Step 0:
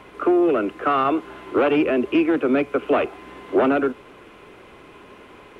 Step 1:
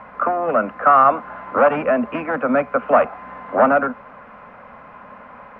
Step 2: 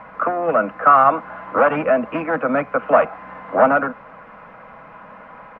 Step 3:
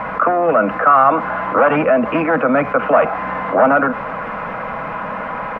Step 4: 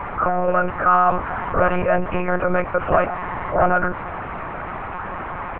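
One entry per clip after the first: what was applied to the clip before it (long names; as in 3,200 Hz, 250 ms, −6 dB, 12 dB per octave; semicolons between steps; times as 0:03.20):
drawn EQ curve 120 Hz 0 dB, 230 Hz +8 dB, 360 Hz −17 dB, 540 Hz +8 dB, 1,200 Hz +10 dB, 1,800 Hz +6 dB, 3,300 Hz −12 dB, 5,100 Hz −12 dB, 7,400 Hz −22 dB; level −1 dB
comb filter 6.2 ms, depth 38%
envelope flattener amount 50%
one-pitch LPC vocoder at 8 kHz 180 Hz; level −4.5 dB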